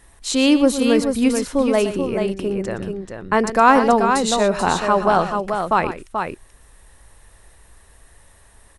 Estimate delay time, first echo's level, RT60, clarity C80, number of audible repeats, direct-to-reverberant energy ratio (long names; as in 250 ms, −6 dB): 118 ms, −12.5 dB, no reverb audible, no reverb audible, 2, no reverb audible